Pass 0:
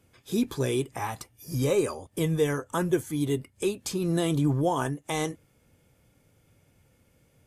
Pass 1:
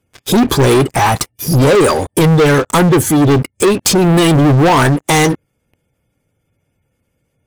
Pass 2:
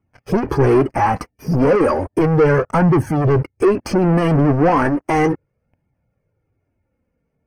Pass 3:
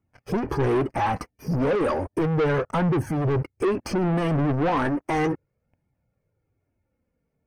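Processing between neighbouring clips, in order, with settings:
spectral gate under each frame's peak -30 dB strong; waveshaping leveller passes 5; trim +7.5 dB
flange 0.34 Hz, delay 0.9 ms, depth 3.8 ms, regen -31%; boxcar filter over 12 samples
saturation -13 dBFS, distortion -15 dB; trim -5 dB

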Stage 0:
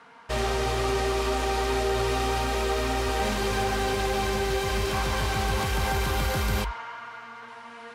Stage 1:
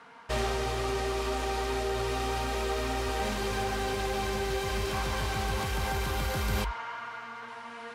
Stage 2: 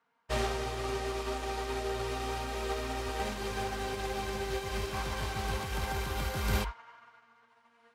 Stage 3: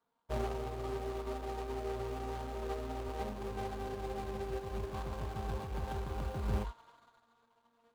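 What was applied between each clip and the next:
gain riding within 5 dB 0.5 s; trim -4.5 dB
upward expansion 2.5:1, over -44 dBFS; trim +2 dB
median filter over 25 samples; trim -3 dB

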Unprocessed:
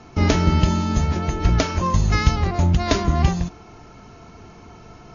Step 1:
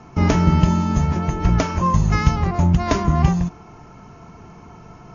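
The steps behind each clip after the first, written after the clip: fifteen-band graphic EQ 160 Hz +7 dB, 1 kHz +5 dB, 4 kHz -7 dB; trim -1 dB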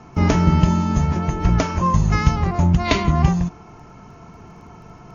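time-frequency box 2.85–3.11 s, 1.9–4.7 kHz +9 dB; crackle 11 per s -45 dBFS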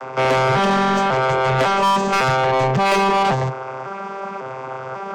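vocoder on a broken chord bare fifth, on C3, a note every 550 ms; resonant low shelf 350 Hz -10 dB, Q 1.5; overdrive pedal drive 31 dB, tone 3.8 kHz, clips at -11.5 dBFS; trim +2 dB

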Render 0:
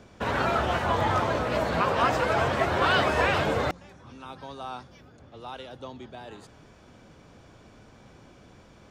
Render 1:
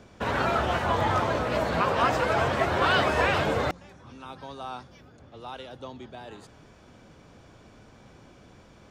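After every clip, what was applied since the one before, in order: no audible change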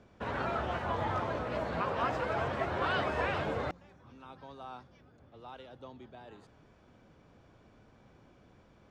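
low-pass 2.8 kHz 6 dB/octave; trim -8 dB

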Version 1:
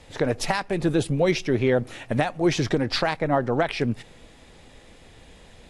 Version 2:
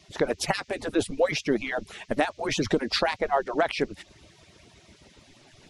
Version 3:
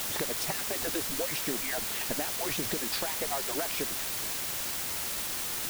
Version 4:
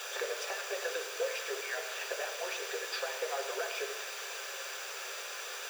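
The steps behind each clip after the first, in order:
harmonic-percussive separation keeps percussive; band noise 2–6.4 kHz -62 dBFS
compression, threshold -35 dBFS, peak gain reduction 16 dB; word length cut 6-bit, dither triangular; trim +2 dB
rippled Chebyshev high-pass 390 Hz, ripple 3 dB; reverberation RT60 0.85 s, pre-delay 3 ms, DRR 3.5 dB; trim -8 dB

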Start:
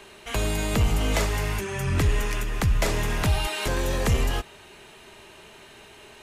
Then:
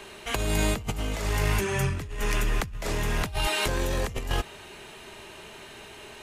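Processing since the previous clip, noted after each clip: compressor with a negative ratio -26 dBFS, ratio -0.5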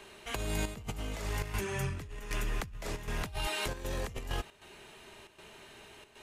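square tremolo 1.3 Hz, depth 65%, duty 85%; trim -8 dB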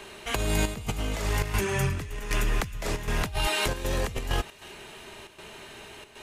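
feedback echo behind a high-pass 315 ms, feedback 46%, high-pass 1.9 kHz, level -16.5 dB; trim +8 dB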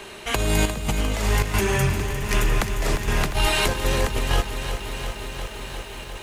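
bit-crushed delay 352 ms, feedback 80%, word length 9-bit, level -10 dB; trim +5 dB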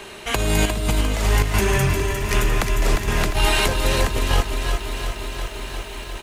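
delay 355 ms -7.5 dB; trim +1.5 dB

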